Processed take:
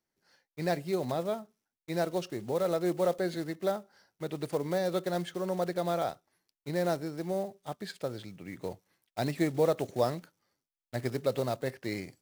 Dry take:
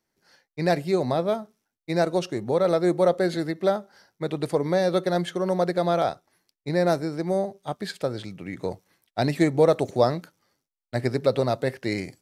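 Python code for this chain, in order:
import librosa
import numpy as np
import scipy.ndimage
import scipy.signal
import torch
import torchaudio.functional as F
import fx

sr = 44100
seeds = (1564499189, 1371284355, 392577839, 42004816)

y = fx.block_float(x, sr, bits=5)
y = F.gain(torch.from_numpy(y), -8.0).numpy()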